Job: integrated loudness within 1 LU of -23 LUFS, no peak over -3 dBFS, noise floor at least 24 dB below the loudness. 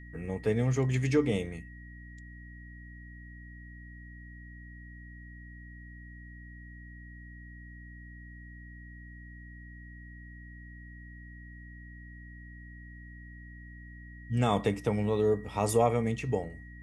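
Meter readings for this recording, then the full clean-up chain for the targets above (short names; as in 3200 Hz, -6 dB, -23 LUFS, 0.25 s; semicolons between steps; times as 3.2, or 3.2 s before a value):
hum 60 Hz; harmonics up to 300 Hz; hum level -46 dBFS; steady tone 1900 Hz; tone level -52 dBFS; loudness -29.5 LUFS; peak -12.5 dBFS; loudness target -23.0 LUFS
-> de-hum 60 Hz, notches 5; notch 1900 Hz, Q 30; gain +6.5 dB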